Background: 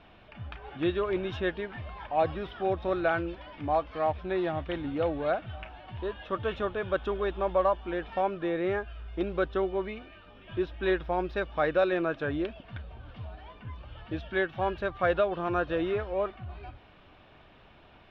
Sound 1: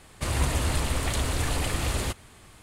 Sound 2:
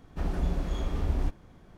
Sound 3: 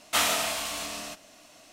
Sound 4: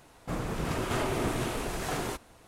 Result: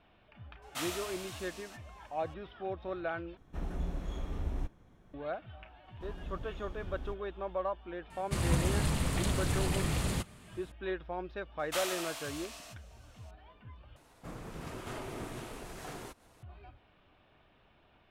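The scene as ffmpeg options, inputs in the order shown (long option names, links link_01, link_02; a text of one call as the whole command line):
ffmpeg -i bed.wav -i cue0.wav -i cue1.wav -i cue2.wav -i cue3.wav -filter_complex "[3:a]asplit=2[link_01][link_02];[2:a]asplit=2[link_03][link_04];[0:a]volume=-9.5dB[link_05];[link_03]bandreject=frequency=4700:width=6.1[link_06];[1:a]equalizer=frequency=170:width_type=o:width=0.77:gain=12[link_07];[link_02]highpass=400[link_08];[4:a]acompressor=mode=upward:threshold=-41dB:ratio=2.5:attack=3.2:release=140:knee=2.83:detection=peak[link_09];[link_05]asplit=3[link_10][link_11][link_12];[link_10]atrim=end=3.374[link_13];[link_06]atrim=end=1.77,asetpts=PTS-STARTPTS,volume=-7.5dB[link_14];[link_11]atrim=start=5.136:end=13.964[link_15];[link_09]atrim=end=2.47,asetpts=PTS-STARTPTS,volume=-11.5dB[link_16];[link_12]atrim=start=16.426[link_17];[link_01]atrim=end=1.72,asetpts=PTS-STARTPTS,volume=-14.5dB,afade=type=in:duration=0.004:curve=hsin,afade=type=out:start_time=1.716:duration=0.004:curve=hsin,adelay=620[link_18];[link_04]atrim=end=1.77,asetpts=PTS-STARTPTS,volume=-14.5dB,afade=type=in:duration=0.004:curve=hsin,afade=type=out:start_time=1.766:duration=0.004:curve=hsin,adelay=5840[link_19];[link_07]atrim=end=2.62,asetpts=PTS-STARTPTS,volume=-6.5dB,afade=type=in:duration=0.004:curve=hsin,afade=type=out:start_time=2.616:duration=0.004:curve=hsin,adelay=357210S[link_20];[link_08]atrim=end=1.72,asetpts=PTS-STARTPTS,volume=-11.5dB,afade=type=in:duration=0.004:curve=hsin,afade=type=out:start_time=1.716:duration=0.004:curve=hsin,adelay=11590[link_21];[link_13][link_14]acrossfade=duration=0.004:curve1=hsin:curve2=hsin[link_22];[link_22][link_15]acrossfade=duration=0.004:curve1=hsin:curve2=hsin[link_23];[link_23][link_16]acrossfade=duration=0.004:curve1=hsin:curve2=hsin[link_24];[link_24][link_17]acrossfade=duration=0.004:curve1=hsin:curve2=hsin[link_25];[link_25][link_18][link_19][link_20][link_21]amix=inputs=5:normalize=0" out.wav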